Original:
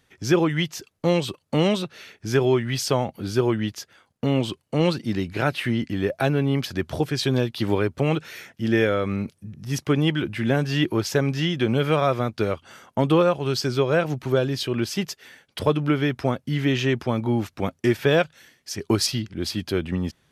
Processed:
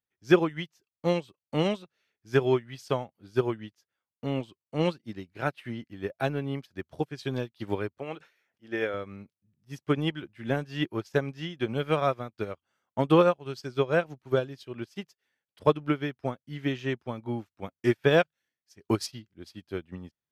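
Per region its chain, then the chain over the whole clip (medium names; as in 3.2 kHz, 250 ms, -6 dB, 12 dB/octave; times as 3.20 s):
7.98–8.94 s: tone controls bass -11 dB, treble -5 dB + decay stretcher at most 73 dB/s
whole clip: peaking EQ 980 Hz +2.5 dB 2.5 oct; upward expansion 2.5:1, over -35 dBFS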